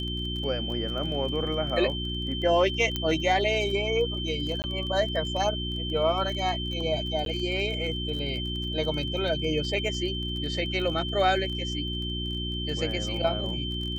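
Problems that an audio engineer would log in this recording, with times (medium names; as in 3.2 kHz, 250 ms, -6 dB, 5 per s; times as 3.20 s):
crackle 21 per s -34 dBFS
hum 60 Hz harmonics 6 -33 dBFS
whine 3.1 kHz -33 dBFS
2.96 s: pop -14 dBFS
4.62–4.64 s: dropout 19 ms
7.25–7.26 s: dropout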